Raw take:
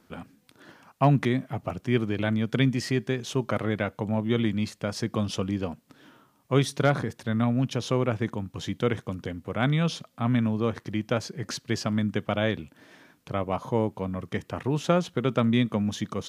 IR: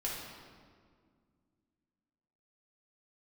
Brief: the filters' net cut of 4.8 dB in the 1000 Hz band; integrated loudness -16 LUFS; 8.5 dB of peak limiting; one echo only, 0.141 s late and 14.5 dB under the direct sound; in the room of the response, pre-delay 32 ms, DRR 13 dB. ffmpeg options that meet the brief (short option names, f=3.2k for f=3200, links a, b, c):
-filter_complex "[0:a]equalizer=f=1k:t=o:g=-7,alimiter=limit=-18dB:level=0:latency=1,aecho=1:1:141:0.188,asplit=2[a][b];[1:a]atrim=start_sample=2205,adelay=32[c];[b][c]afir=irnorm=-1:irlink=0,volume=-16.5dB[d];[a][d]amix=inputs=2:normalize=0,volume=14dB"